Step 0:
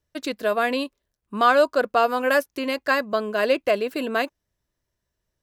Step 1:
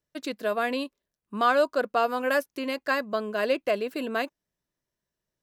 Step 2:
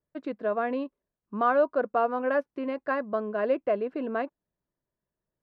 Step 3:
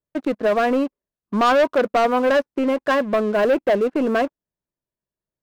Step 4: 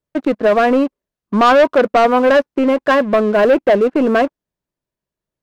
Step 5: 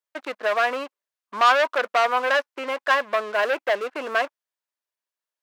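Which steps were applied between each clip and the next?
low shelf with overshoot 120 Hz −7 dB, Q 1.5; level −5 dB
low-pass filter 1,300 Hz 12 dB per octave
leveller curve on the samples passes 3; level +1.5 dB
high-shelf EQ 6,500 Hz −6.5 dB; level +6 dB
high-pass filter 1,000 Hz 12 dB per octave; level −2 dB

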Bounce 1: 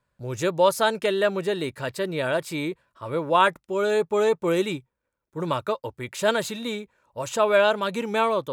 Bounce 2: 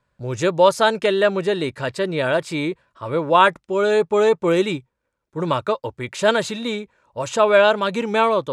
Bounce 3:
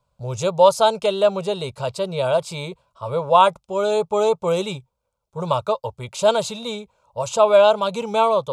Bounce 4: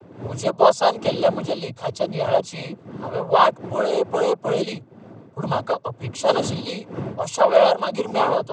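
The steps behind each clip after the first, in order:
Bessel low-pass filter 7,300 Hz, order 4; level +5 dB
phaser with its sweep stopped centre 740 Hz, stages 4; level +2.5 dB
wind on the microphone 330 Hz −34 dBFS; cochlear-implant simulation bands 16; level −1 dB

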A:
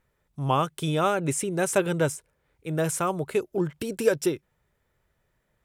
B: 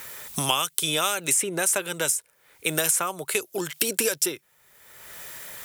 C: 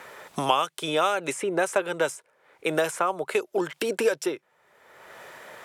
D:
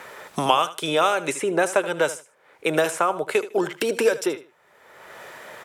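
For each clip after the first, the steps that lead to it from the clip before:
spectral tilt +4.5 dB per octave; multiband upward and downward compressor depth 100%; level −1 dB
resonant band-pass 640 Hz, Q 0.73; level +6 dB
repeating echo 77 ms, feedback 22%, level −15 dB; level +3.5 dB

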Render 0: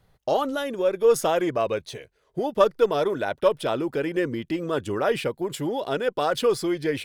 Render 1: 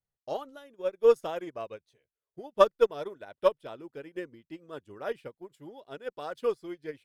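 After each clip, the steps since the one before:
expander for the loud parts 2.5 to 1, over −34 dBFS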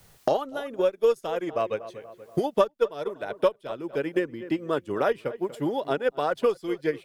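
feedback echo with a low-pass in the loop 239 ms, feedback 22%, low-pass 2,100 Hz, level −19.5 dB
multiband upward and downward compressor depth 100%
level +6.5 dB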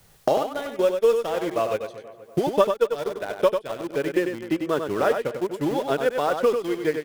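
in parallel at −10 dB: bit reduction 5 bits
on the sum: single-tap delay 96 ms −6.5 dB

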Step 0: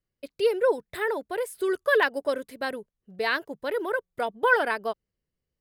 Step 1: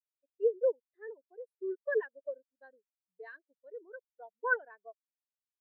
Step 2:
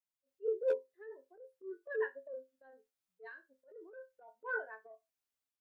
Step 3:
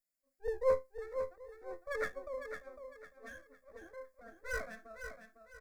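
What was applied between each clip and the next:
low-shelf EQ 160 Hz −6.5 dB; every bin expanded away from the loudest bin 2.5 to 1; level −8.5 dB
resonators tuned to a chord F2 major, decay 0.2 s; transient designer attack −11 dB, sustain +6 dB; gain into a clipping stage and back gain 32.5 dB; level +7.5 dB
lower of the sound and its delayed copy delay 0.4 ms; phaser with its sweep stopped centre 600 Hz, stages 8; on a send: repeating echo 504 ms, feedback 32%, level −8 dB; on the sum: level +6.5 dB

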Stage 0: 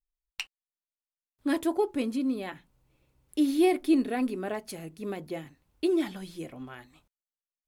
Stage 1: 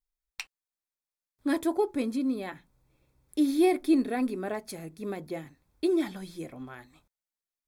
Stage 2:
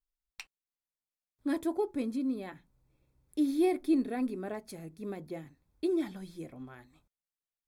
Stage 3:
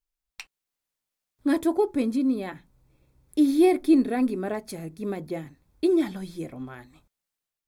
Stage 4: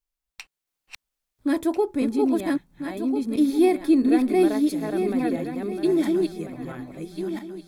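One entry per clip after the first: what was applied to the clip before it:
notch filter 2,900 Hz, Q 5.4
low-shelf EQ 430 Hz +5.5 dB; level −7.5 dB
automatic gain control gain up to 6 dB; level +2.5 dB
feedback delay that plays each chunk backwards 672 ms, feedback 41%, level −1.5 dB

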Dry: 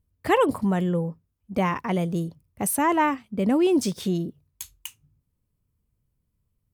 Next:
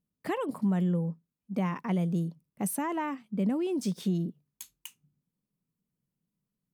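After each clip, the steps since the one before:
downward compressor, threshold −22 dBFS, peak gain reduction 7 dB
low shelf with overshoot 120 Hz −13 dB, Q 3
level −7.5 dB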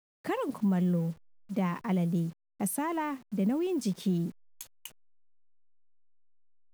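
hold until the input has moved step −50.5 dBFS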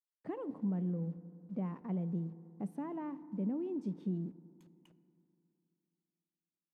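resonant band-pass 230 Hz, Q 0.52
feedback delay network reverb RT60 2.9 s, high-frequency decay 0.3×, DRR 14.5 dB
level −7 dB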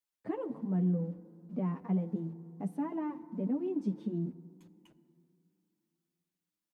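barber-pole flanger 7.9 ms +1.1 Hz
level +7 dB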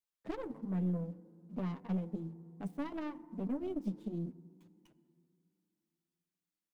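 stylus tracing distortion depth 0.41 ms
level −4.5 dB

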